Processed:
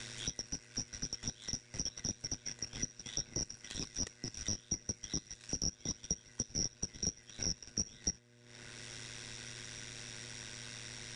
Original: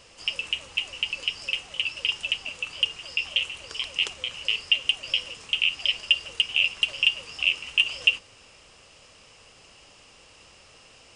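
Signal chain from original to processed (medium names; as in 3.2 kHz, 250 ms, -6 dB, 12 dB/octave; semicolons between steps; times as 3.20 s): four frequency bands reordered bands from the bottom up 3142; ring modulator 53 Hz; transient shaper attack -8 dB, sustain -12 dB; mains buzz 120 Hz, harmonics 5, -64 dBFS -5 dB/octave; three bands compressed up and down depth 70%; trim -4.5 dB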